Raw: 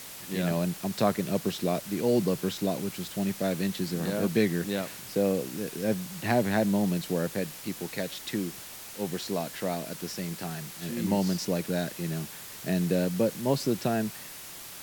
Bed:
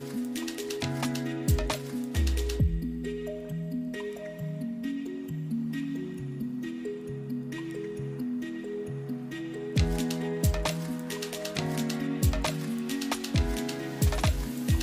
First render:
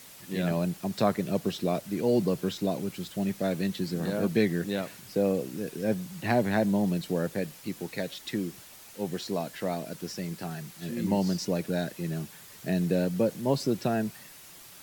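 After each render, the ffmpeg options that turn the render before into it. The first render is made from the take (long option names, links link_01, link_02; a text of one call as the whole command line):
ffmpeg -i in.wav -af "afftdn=noise_reduction=7:noise_floor=-43" out.wav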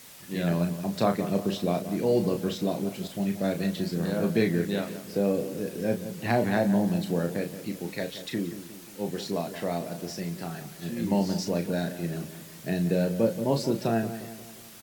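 ffmpeg -i in.wav -filter_complex "[0:a]asplit=2[link_01][link_02];[link_02]adelay=35,volume=-7dB[link_03];[link_01][link_03]amix=inputs=2:normalize=0,asplit=2[link_04][link_05];[link_05]adelay=177,lowpass=frequency=2000:poles=1,volume=-11.5dB,asplit=2[link_06][link_07];[link_07]adelay=177,lowpass=frequency=2000:poles=1,volume=0.52,asplit=2[link_08][link_09];[link_09]adelay=177,lowpass=frequency=2000:poles=1,volume=0.52,asplit=2[link_10][link_11];[link_11]adelay=177,lowpass=frequency=2000:poles=1,volume=0.52,asplit=2[link_12][link_13];[link_13]adelay=177,lowpass=frequency=2000:poles=1,volume=0.52,asplit=2[link_14][link_15];[link_15]adelay=177,lowpass=frequency=2000:poles=1,volume=0.52[link_16];[link_04][link_06][link_08][link_10][link_12][link_14][link_16]amix=inputs=7:normalize=0" out.wav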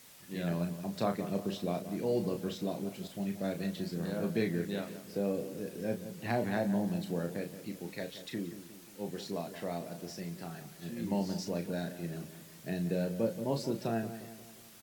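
ffmpeg -i in.wav -af "volume=-7.5dB" out.wav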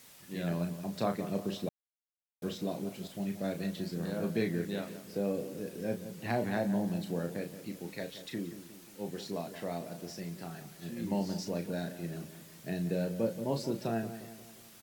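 ffmpeg -i in.wav -filter_complex "[0:a]asplit=3[link_01][link_02][link_03];[link_01]atrim=end=1.69,asetpts=PTS-STARTPTS,afade=type=out:start_time=1.686:duration=0.004:curve=hsin[link_04];[link_02]atrim=start=1.69:end=2.42,asetpts=PTS-STARTPTS,volume=0[link_05];[link_03]atrim=start=2.42,asetpts=PTS-STARTPTS,afade=type=in:duration=0.004:curve=hsin[link_06];[link_04][link_05][link_06]concat=n=3:v=0:a=1" out.wav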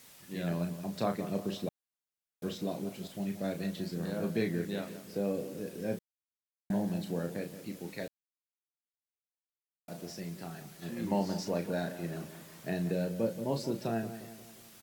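ffmpeg -i in.wav -filter_complex "[0:a]asettb=1/sr,asplit=3[link_01][link_02][link_03];[link_01]atrim=end=10.824[link_04];[link_02]atrim=start=10.82:end=12.92,asetpts=PTS-STARTPTS,afade=type=in:duration=0.004:curve=qsin,afade=type=out:start_time=2.096:duration=0.004:curve=qsin,equalizer=frequency=970:width=0.6:gain=6[link_05];[link_03]atrim=start=12.916[link_06];[link_04][link_05]acrossfade=duration=0.004:curve1=hsin:curve2=qsin[link_07];[link_07][link_06]acrossfade=duration=0.004:curve1=qsin:curve2=hsin,asplit=5[link_08][link_09][link_10][link_11][link_12];[link_08]atrim=end=5.99,asetpts=PTS-STARTPTS,afade=type=out:start_time=5.986:duration=0.004:curve=hsin[link_13];[link_09]atrim=start=5.99:end=6.7,asetpts=PTS-STARTPTS,volume=0[link_14];[link_10]atrim=start=6.7:end=8.08,asetpts=PTS-STARTPTS,afade=type=in:duration=0.004:curve=hsin,afade=type=out:start_time=1.376:duration=0.004:curve=hsin[link_15];[link_11]atrim=start=8.08:end=9.88,asetpts=PTS-STARTPTS,volume=0[link_16];[link_12]atrim=start=9.88,asetpts=PTS-STARTPTS,afade=type=in:duration=0.004:curve=hsin[link_17];[link_13][link_14][link_15][link_16][link_17]concat=n=5:v=0:a=1" out.wav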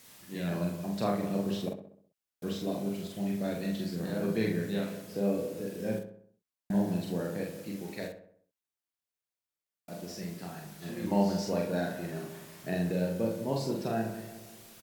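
ffmpeg -i in.wav -filter_complex "[0:a]asplit=2[link_01][link_02];[link_02]adelay=45,volume=-3dB[link_03];[link_01][link_03]amix=inputs=2:normalize=0,asplit=2[link_04][link_05];[link_05]adelay=65,lowpass=frequency=2300:poles=1,volume=-9dB,asplit=2[link_06][link_07];[link_07]adelay=65,lowpass=frequency=2300:poles=1,volume=0.52,asplit=2[link_08][link_09];[link_09]adelay=65,lowpass=frequency=2300:poles=1,volume=0.52,asplit=2[link_10][link_11];[link_11]adelay=65,lowpass=frequency=2300:poles=1,volume=0.52,asplit=2[link_12][link_13];[link_13]adelay=65,lowpass=frequency=2300:poles=1,volume=0.52,asplit=2[link_14][link_15];[link_15]adelay=65,lowpass=frequency=2300:poles=1,volume=0.52[link_16];[link_06][link_08][link_10][link_12][link_14][link_16]amix=inputs=6:normalize=0[link_17];[link_04][link_17]amix=inputs=2:normalize=0" out.wav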